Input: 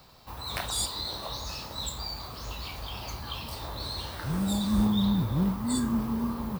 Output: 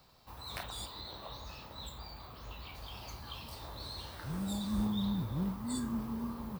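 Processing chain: 0.63–2.75 s: high-order bell 7.4 kHz -9 dB; trim -8.5 dB

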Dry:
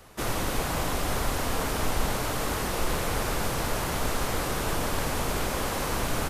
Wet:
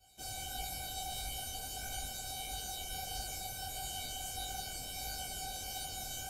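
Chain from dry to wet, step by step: high-pass 52 Hz 12 dB/octave; high-order bell 1.3 kHz -13 dB; feedback comb 760 Hz, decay 0.31 s, mix 100%; detune thickener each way 54 cents; trim +15.5 dB

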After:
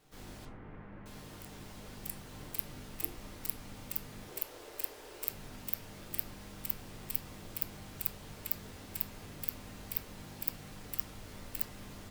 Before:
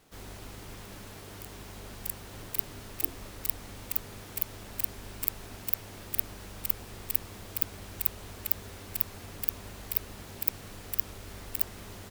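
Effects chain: 0.45–1.06 s: low-pass 2 kHz 24 dB/octave; 4.28–5.28 s: resonant low shelf 280 Hz -12.5 dB, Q 3; on a send: reverberation RT60 0.35 s, pre-delay 7 ms, DRR 1.5 dB; on the sum: trim -6.5 dB

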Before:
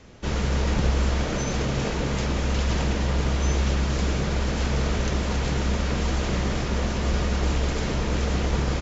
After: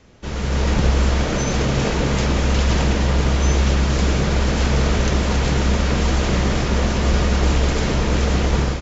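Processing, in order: level rider gain up to 9 dB; trim -2 dB

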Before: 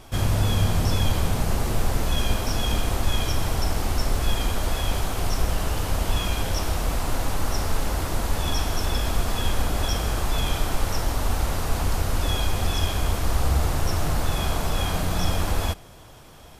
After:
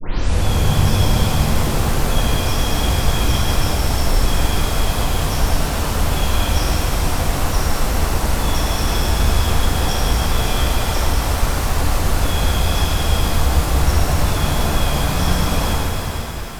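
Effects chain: tape start-up on the opening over 0.43 s; pitch-shifted reverb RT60 3.9 s, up +7 st, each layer -8 dB, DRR -5.5 dB

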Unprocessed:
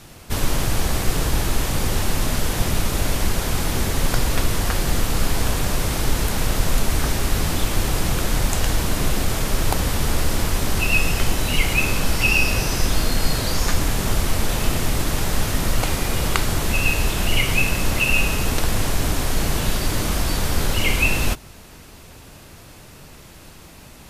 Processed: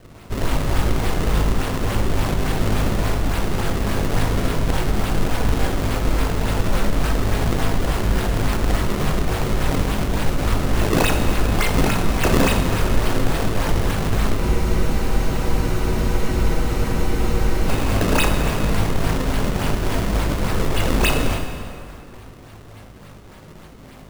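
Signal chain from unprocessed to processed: low-pass 9.5 kHz 24 dB/octave; feedback comb 52 Hz, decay 0.47 s, harmonics all, mix 90%; decimation with a swept rate 32×, swing 160% 3.5 Hz; plate-style reverb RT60 2.5 s, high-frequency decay 0.75×, pre-delay 0 ms, DRR 4.5 dB; spectral freeze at 14.43 s, 3.25 s; trim +8 dB

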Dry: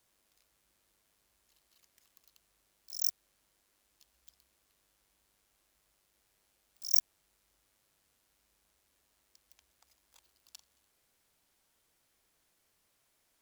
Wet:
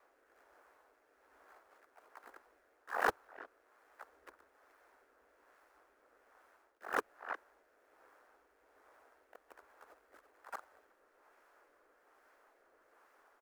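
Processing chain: bit-reversed sample order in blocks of 128 samples; resonant low shelf 170 Hz -13.5 dB, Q 3; speakerphone echo 360 ms, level -28 dB; reverse; compression 12:1, threshold -38 dBFS, peak gain reduction 20 dB; reverse; FFT filter 110 Hz 0 dB, 210 Hz -26 dB, 420 Hz +8 dB, 1.4 kHz +11 dB, 3 kHz -14 dB, 9.6 kHz -18 dB; rotary cabinet horn 1.2 Hz; harmony voices -7 st -8 dB, -4 st -7 dB, +3 st -2 dB; trim +9 dB

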